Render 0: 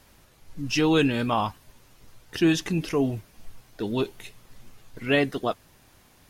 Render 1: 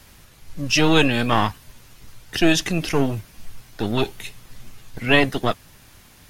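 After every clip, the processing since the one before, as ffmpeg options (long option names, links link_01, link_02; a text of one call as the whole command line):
ffmpeg -i in.wav -filter_complex "[0:a]acrossover=split=230|1300[link_01][link_02][link_03];[link_01]alimiter=level_in=8dB:limit=-24dB:level=0:latency=1,volume=-8dB[link_04];[link_02]aeval=exprs='max(val(0),0)':channel_layout=same[link_05];[link_04][link_05][link_03]amix=inputs=3:normalize=0,volume=8.5dB" out.wav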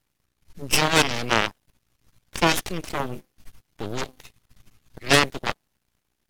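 ffmpeg -i in.wav -af "bandreject=frequency=256.9:width_type=h:width=4,bandreject=frequency=513.8:width_type=h:width=4,bandreject=frequency=770.7:width_type=h:width=4,aeval=exprs='val(0)+0.00282*(sin(2*PI*60*n/s)+sin(2*PI*2*60*n/s)/2+sin(2*PI*3*60*n/s)/3+sin(2*PI*4*60*n/s)/4+sin(2*PI*5*60*n/s)/5)':channel_layout=same,aeval=exprs='0.891*(cos(1*acos(clip(val(0)/0.891,-1,1)))-cos(1*PI/2))+0.00562*(cos(3*acos(clip(val(0)/0.891,-1,1)))-cos(3*PI/2))+0.126*(cos(7*acos(clip(val(0)/0.891,-1,1)))-cos(7*PI/2))+0.141*(cos(8*acos(clip(val(0)/0.891,-1,1)))-cos(8*PI/2))':channel_layout=same" out.wav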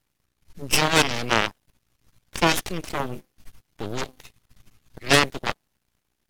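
ffmpeg -i in.wav -af anull out.wav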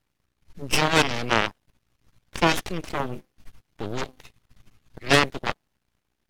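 ffmpeg -i in.wav -af "highshelf=frequency=5700:gain=-8" out.wav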